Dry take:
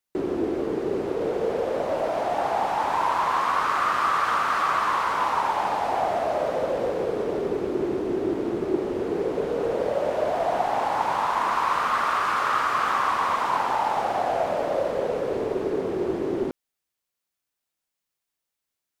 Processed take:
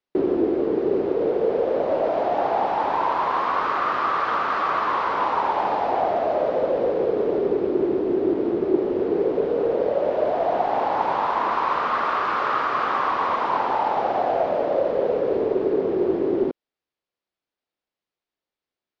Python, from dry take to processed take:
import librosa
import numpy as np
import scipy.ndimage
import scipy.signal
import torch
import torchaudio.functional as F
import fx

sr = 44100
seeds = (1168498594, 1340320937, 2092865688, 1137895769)

y = scipy.signal.sosfilt(scipy.signal.butter(4, 4800.0, 'lowpass', fs=sr, output='sos'), x)
y = fx.peak_eq(y, sr, hz=410.0, db=8.0, octaves=2.0)
y = fx.rider(y, sr, range_db=10, speed_s=0.5)
y = y * librosa.db_to_amplitude(-2.5)